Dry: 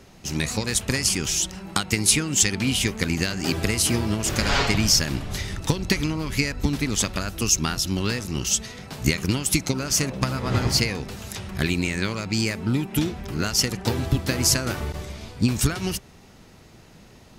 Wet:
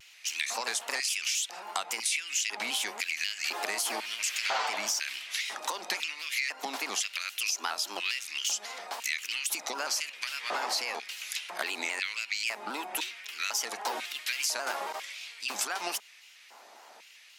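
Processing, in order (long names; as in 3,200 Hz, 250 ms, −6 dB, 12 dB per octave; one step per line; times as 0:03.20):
brickwall limiter −13 dBFS, peak gain reduction 8.5 dB
auto-filter high-pass square 1 Hz 800–2,400 Hz
elliptic high-pass filter 210 Hz, stop band 40 dB
downward compressor 3 to 1, threshold −29 dBFS, peak gain reduction 8.5 dB
pitch modulation by a square or saw wave square 3.7 Hz, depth 100 cents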